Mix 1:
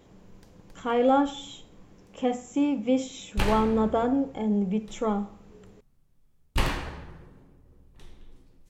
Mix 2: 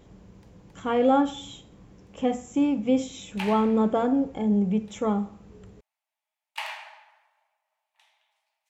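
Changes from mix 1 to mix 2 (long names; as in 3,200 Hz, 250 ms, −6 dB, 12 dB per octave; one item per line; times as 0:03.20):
background: add Chebyshev high-pass with heavy ripple 610 Hz, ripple 9 dB
master: add low-shelf EQ 140 Hz +9 dB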